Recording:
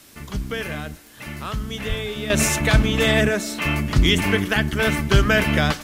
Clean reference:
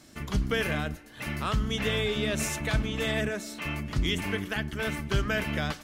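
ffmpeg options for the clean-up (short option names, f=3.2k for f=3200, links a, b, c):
-filter_complex "[0:a]adeclick=t=4,asplit=3[a][b][c];[a]afade=t=out:st=1.88:d=0.02[d];[b]highpass=f=140:w=0.5412,highpass=f=140:w=1.3066,afade=t=in:st=1.88:d=0.02,afade=t=out:st=2:d=0.02[e];[c]afade=t=in:st=2:d=0.02[f];[d][e][f]amix=inputs=3:normalize=0,agate=range=-21dB:threshold=-28dB,asetnsamples=n=441:p=0,asendcmd='2.3 volume volume -11dB',volume=0dB"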